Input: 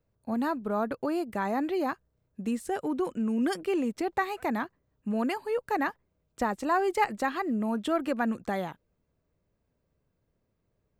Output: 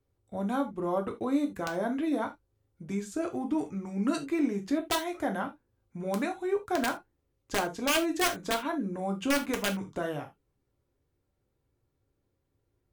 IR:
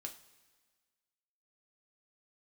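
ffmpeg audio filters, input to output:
-filter_complex "[0:a]asetrate=37529,aresample=44100,aeval=exprs='(mod(8.41*val(0)+1,2)-1)/8.41':channel_layout=same[link_01];[1:a]atrim=start_sample=2205,atrim=end_sample=3969[link_02];[link_01][link_02]afir=irnorm=-1:irlink=0,volume=3dB"

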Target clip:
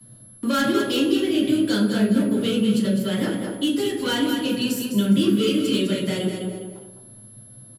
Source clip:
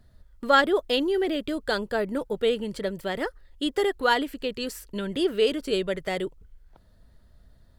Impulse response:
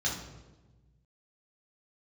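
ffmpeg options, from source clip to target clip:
-filter_complex "[0:a]aeval=exprs='val(0)+0.00141*sin(2*PI*11000*n/s)':channel_layout=same,asplit=2[link_01][link_02];[link_02]aeval=exprs='0.0794*(abs(mod(val(0)/0.0794+3,4)-2)-1)':channel_layout=same,volume=-5.5dB[link_03];[link_01][link_03]amix=inputs=2:normalize=0,equalizer=frequency=1900:width_type=o:width=0.54:gain=-5.5,aecho=1:1:205|410|615:0.398|0.111|0.0312[link_04];[1:a]atrim=start_sample=2205,asetrate=83790,aresample=44100[link_05];[link_04][link_05]afir=irnorm=-1:irlink=0,acrossover=split=280|1500[link_06][link_07][link_08];[link_07]acompressor=threshold=-33dB:ratio=6[link_09];[link_08]asoftclip=type=tanh:threshold=-23.5dB[link_10];[link_06][link_09][link_10]amix=inputs=3:normalize=0,volume=2.5dB"

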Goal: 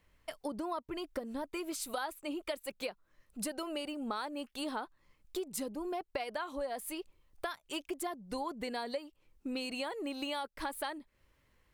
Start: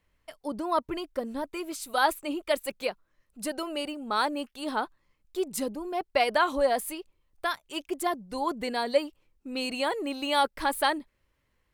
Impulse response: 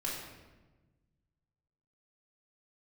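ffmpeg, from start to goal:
-af "acompressor=threshold=-38dB:ratio=10,volume=3dB"

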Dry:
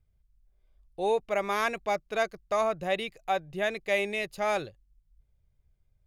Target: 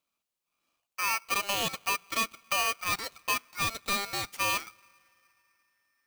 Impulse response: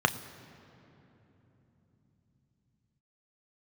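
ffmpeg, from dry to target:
-filter_complex "[0:a]highpass=frequency=510:width=0.5412,highpass=frequency=510:width=1.3066,acompressor=threshold=-39dB:ratio=2,aeval=exprs='0.0631*(cos(1*acos(clip(val(0)/0.0631,-1,1)))-cos(1*PI/2))+0.00447*(cos(8*acos(clip(val(0)/0.0631,-1,1)))-cos(8*PI/2))':channel_layout=same,asplit=2[link_01][link_02];[1:a]atrim=start_sample=2205,asetrate=48510,aresample=44100[link_03];[link_02][link_03]afir=irnorm=-1:irlink=0,volume=-25.5dB[link_04];[link_01][link_04]amix=inputs=2:normalize=0,aeval=exprs='val(0)*sgn(sin(2*PI*1800*n/s))':channel_layout=same,volume=5.5dB"

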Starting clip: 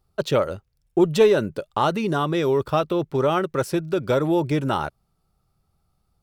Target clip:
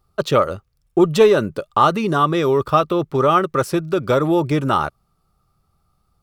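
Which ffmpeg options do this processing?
ffmpeg -i in.wav -af "equalizer=frequency=1200:width=7.5:gain=10,volume=3.5dB" out.wav

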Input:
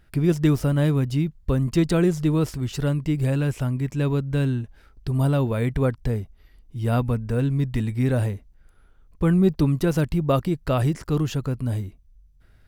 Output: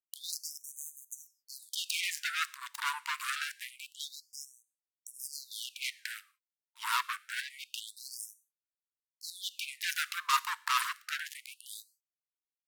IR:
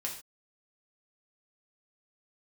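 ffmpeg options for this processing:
-filter_complex "[0:a]acrusher=bits=3:mix=0:aa=0.5,asplit=2[link_01][link_02];[1:a]atrim=start_sample=2205,asetrate=37485,aresample=44100,highshelf=frequency=4700:gain=4.5[link_03];[link_02][link_03]afir=irnorm=-1:irlink=0,volume=-18.5dB[link_04];[link_01][link_04]amix=inputs=2:normalize=0,afftfilt=real='re*gte(b*sr/1024,880*pow(6200/880,0.5+0.5*sin(2*PI*0.26*pts/sr)))':imag='im*gte(b*sr/1024,880*pow(6200/880,0.5+0.5*sin(2*PI*0.26*pts/sr)))':win_size=1024:overlap=0.75"

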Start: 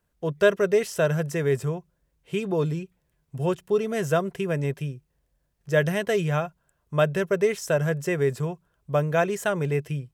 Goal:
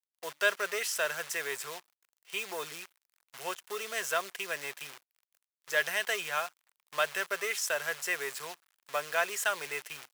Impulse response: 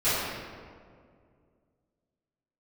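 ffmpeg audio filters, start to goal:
-filter_complex "[0:a]asplit=2[link_01][link_02];[link_02]asoftclip=type=tanh:threshold=-23dB,volume=-3.5dB[link_03];[link_01][link_03]amix=inputs=2:normalize=0,acrusher=bits=7:dc=4:mix=0:aa=0.000001,highpass=1200,volume=-1.5dB"

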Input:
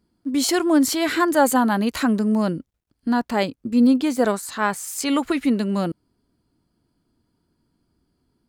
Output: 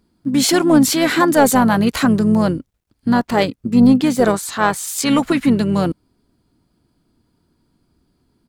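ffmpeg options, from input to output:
ffmpeg -i in.wav -filter_complex "[0:a]acontrast=69,asplit=3[link_01][link_02][link_03];[link_02]asetrate=22050,aresample=44100,atempo=2,volume=-15dB[link_04];[link_03]asetrate=35002,aresample=44100,atempo=1.25992,volume=-11dB[link_05];[link_01][link_04][link_05]amix=inputs=3:normalize=0,volume=-1dB" out.wav

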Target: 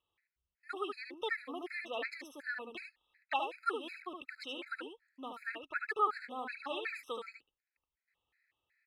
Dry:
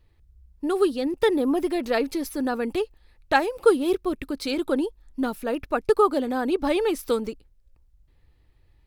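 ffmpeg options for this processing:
ffmpeg -i in.wav -af "bandpass=frequency=2000:width_type=q:width=2.7:csg=0,aecho=1:1:74:0.562,afftfilt=real='re*gt(sin(2*PI*2.7*pts/sr)*(1-2*mod(floor(b*sr/1024/1300),2)),0)':imag='im*gt(sin(2*PI*2.7*pts/sr)*(1-2*mod(floor(b*sr/1024/1300),2)),0)':win_size=1024:overlap=0.75,volume=2dB" out.wav

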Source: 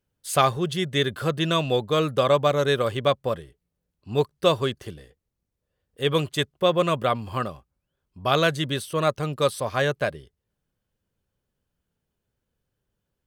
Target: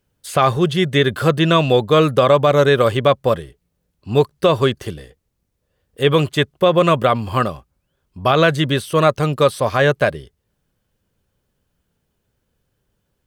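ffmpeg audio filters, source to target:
ffmpeg -i in.wav -filter_complex "[0:a]acrossover=split=3300[link_01][link_02];[link_02]acompressor=threshold=-40dB:ratio=4:attack=1:release=60[link_03];[link_01][link_03]amix=inputs=2:normalize=0,alimiter=level_in=12dB:limit=-1dB:release=50:level=0:latency=1,volume=-2.5dB" out.wav

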